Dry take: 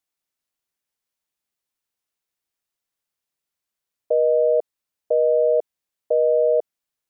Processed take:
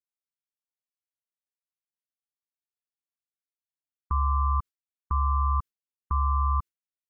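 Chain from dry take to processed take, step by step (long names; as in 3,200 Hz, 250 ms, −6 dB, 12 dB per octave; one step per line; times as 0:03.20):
brickwall limiter −14.5 dBFS, peak gain reduction 3 dB
ring modulation 550 Hz
Butterworth band-reject 720 Hz, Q 1.2
noise gate with hold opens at −21 dBFS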